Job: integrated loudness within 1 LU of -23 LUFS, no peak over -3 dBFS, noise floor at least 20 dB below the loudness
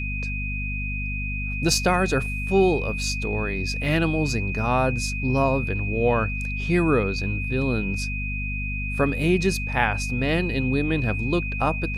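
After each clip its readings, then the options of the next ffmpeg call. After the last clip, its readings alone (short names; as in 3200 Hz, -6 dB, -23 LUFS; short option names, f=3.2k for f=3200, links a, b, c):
hum 50 Hz; harmonics up to 250 Hz; hum level -27 dBFS; steady tone 2500 Hz; tone level -30 dBFS; loudness -24.0 LUFS; peak -5.5 dBFS; loudness target -23.0 LUFS
-> -af "bandreject=f=50:t=h:w=6,bandreject=f=100:t=h:w=6,bandreject=f=150:t=h:w=6,bandreject=f=200:t=h:w=6,bandreject=f=250:t=h:w=6"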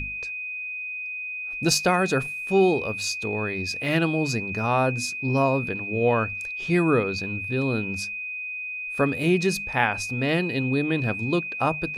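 hum none; steady tone 2500 Hz; tone level -30 dBFS
-> -af "bandreject=f=2.5k:w=30"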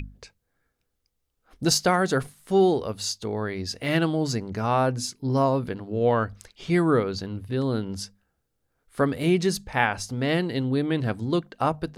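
steady tone none; loudness -25.0 LUFS; peak -6.5 dBFS; loudness target -23.0 LUFS
-> -af "volume=2dB"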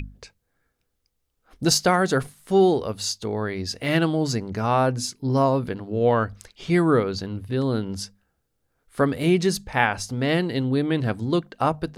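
loudness -23.0 LUFS; peak -4.5 dBFS; noise floor -75 dBFS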